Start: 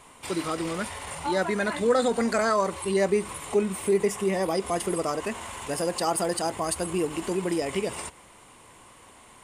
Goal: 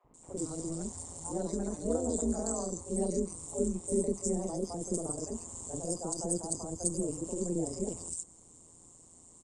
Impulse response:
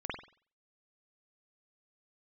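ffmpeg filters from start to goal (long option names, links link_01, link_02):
-filter_complex "[0:a]firequalizer=gain_entry='entry(290,0);entry(1300,-20);entry(2500,-21);entry(7700,12);entry(11000,-21)':delay=0.05:min_phase=1,acrossover=split=100|1300|4900[link_01][link_02][link_03][link_04];[link_03]acompressor=threshold=-58dB:ratio=6[link_05];[link_01][link_02][link_05][link_04]amix=inputs=4:normalize=0,tremolo=f=170:d=0.889,acrossover=split=550|2200[link_06][link_07][link_08];[link_06]adelay=40[link_09];[link_08]adelay=140[link_10];[link_09][link_07][link_10]amix=inputs=3:normalize=0"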